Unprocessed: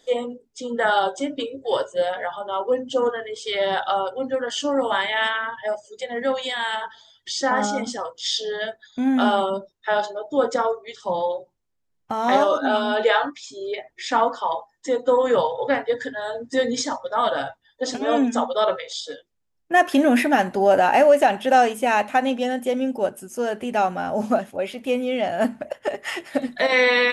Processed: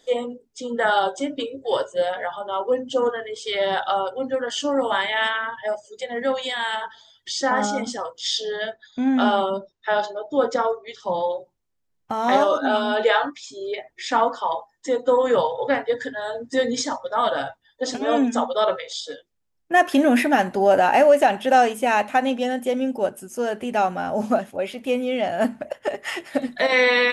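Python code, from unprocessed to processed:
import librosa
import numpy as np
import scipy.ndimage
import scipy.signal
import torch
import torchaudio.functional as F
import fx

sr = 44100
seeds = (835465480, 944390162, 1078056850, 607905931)

y = fx.lowpass(x, sr, hz=6800.0, slope=24, at=(8.56, 11.24))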